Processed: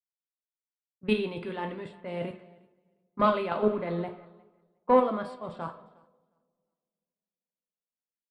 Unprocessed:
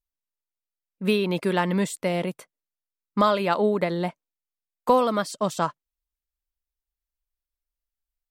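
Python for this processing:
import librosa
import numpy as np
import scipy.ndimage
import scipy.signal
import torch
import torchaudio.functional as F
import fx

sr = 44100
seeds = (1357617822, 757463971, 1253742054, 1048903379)

y = fx.level_steps(x, sr, step_db=10)
y = fx.leveller(y, sr, passes=1)
y = np.convolve(y, np.full(7, 1.0 / 7))[:len(y)]
y = fx.rev_double_slope(y, sr, seeds[0], early_s=0.52, late_s=4.6, knee_db=-18, drr_db=4.0)
y = fx.env_lowpass(y, sr, base_hz=520.0, full_db=-22.0)
y = fx.echo_feedback(y, sr, ms=358, feedback_pct=32, wet_db=-17)
y = fx.band_widen(y, sr, depth_pct=70)
y = y * 10.0 ** (-7.5 / 20.0)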